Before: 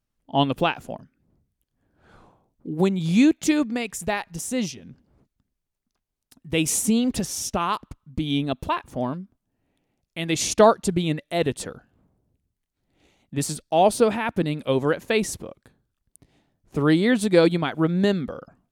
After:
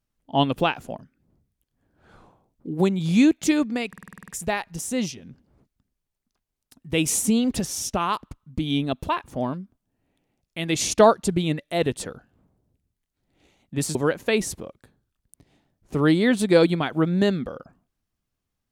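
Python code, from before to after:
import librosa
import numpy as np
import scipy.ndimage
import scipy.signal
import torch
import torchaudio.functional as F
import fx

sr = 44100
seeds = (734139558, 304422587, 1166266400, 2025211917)

y = fx.edit(x, sr, fx.stutter(start_s=3.88, slice_s=0.05, count=9),
    fx.cut(start_s=13.55, length_s=1.22), tone=tone)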